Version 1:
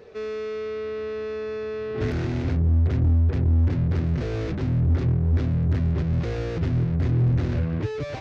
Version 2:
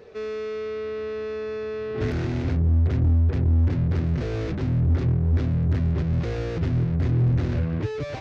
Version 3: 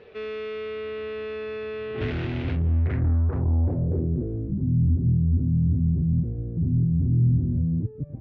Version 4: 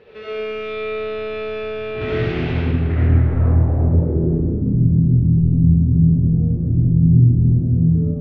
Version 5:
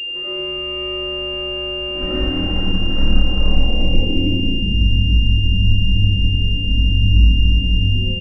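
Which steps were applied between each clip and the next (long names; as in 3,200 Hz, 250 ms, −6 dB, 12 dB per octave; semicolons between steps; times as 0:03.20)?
no processing that can be heard
low-pass filter sweep 3,000 Hz → 210 Hz, 0:02.66–0:04.51; level −2.5 dB
convolution reverb RT60 1.9 s, pre-delay 30 ms, DRR −8 dB
frequency shifter −65 Hz; comb filter 3.8 ms, depth 55%; switching amplifier with a slow clock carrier 2,800 Hz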